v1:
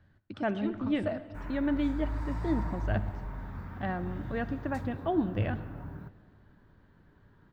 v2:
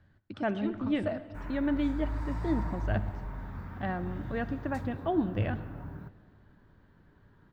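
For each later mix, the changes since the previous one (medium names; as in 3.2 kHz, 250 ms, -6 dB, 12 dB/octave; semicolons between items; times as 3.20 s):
no change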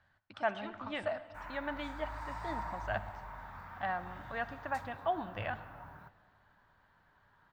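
master: add resonant low shelf 530 Hz -13 dB, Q 1.5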